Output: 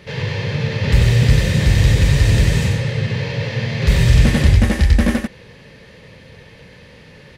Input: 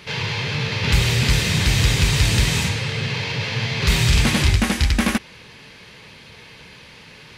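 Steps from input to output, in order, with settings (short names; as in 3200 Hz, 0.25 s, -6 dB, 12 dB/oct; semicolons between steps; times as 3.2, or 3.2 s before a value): low shelf 380 Hz +11.5 dB; small resonant body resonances 540/1800 Hz, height 10 dB, ringing for 20 ms; on a send: echo 93 ms -4.5 dB; on the sum: gain -6.5 dB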